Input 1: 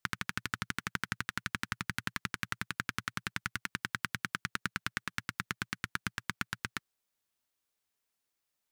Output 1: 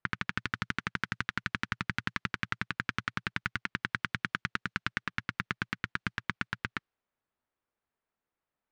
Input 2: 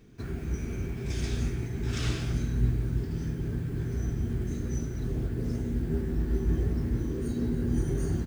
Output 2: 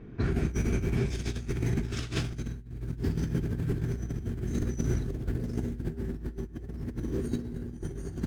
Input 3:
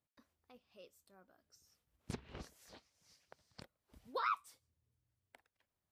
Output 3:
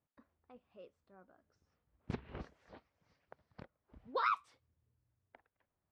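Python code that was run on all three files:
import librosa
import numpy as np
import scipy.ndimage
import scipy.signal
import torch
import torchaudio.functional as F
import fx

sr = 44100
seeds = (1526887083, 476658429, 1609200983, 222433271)

y = fx.env_lowpass(x, sr, base_hz=1600.0, full_db=-28.0)
y = fx.over_compress(y, sr, threshold_db=-34.0, ratio=-0.5)
y = y * librosa.db_to_amplitude(3.5)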